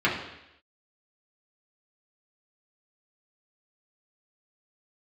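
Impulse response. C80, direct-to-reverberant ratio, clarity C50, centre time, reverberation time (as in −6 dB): 8.5 dB, −6.5 dB, 5.5 dB, 37 ms, 0.85 s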